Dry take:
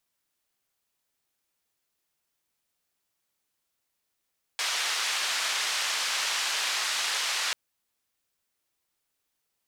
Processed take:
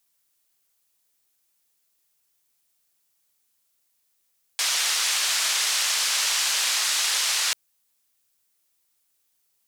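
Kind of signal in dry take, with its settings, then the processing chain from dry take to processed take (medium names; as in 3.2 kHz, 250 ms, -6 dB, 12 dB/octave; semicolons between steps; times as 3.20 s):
noise band 1–5.2 kHz, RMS -29 dBFS 2.94 s
treble shelf 4.3 kHz +11 dB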